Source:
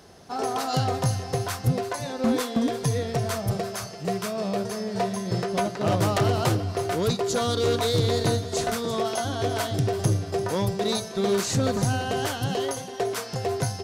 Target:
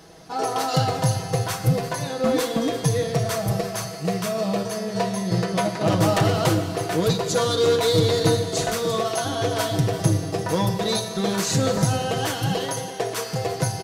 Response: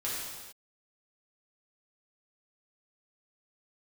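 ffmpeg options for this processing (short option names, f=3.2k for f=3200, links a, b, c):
-filter_complex "[0:a]aecho=1:1:6.2:0.65,asplit=2[a][b];[1:a]atrim=start_sample=2205[c];[b][c]afir=irnorm=-1:irlink=0,volume=-10.5dB[d];[a][d]amix=inputs=2:normalize=0"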